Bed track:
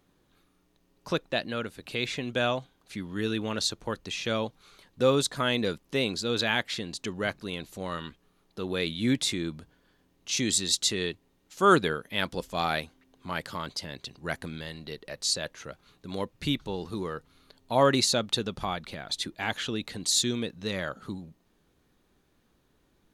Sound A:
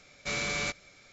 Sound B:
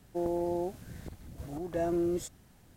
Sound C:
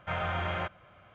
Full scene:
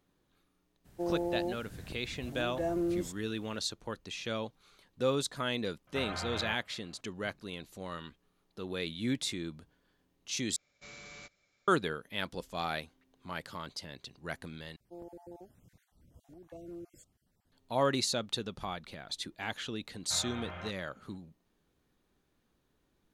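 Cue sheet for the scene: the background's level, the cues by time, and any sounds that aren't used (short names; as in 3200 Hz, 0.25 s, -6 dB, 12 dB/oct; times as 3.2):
bed track -7 dB
0.84 add B -2 dB, fades 0.02 s
5.87 add C -7.5 dB + attack slew limiter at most 570 dB/s
10.56 replace with A -18 dB
14.76 replace with B -15.5 dB + random spectral dropouts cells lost 31%
20.03 add C -11.5 dB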